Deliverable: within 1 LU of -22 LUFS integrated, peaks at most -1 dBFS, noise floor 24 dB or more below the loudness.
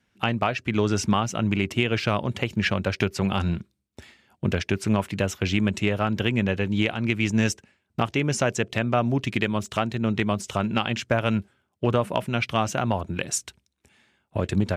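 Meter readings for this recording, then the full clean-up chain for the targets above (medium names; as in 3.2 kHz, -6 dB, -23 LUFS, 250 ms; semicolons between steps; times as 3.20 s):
loudness -25.5 LUFS; peak level -7.5 dBFS; loudness target -22.0 LUFS
-> trim +3.5 dB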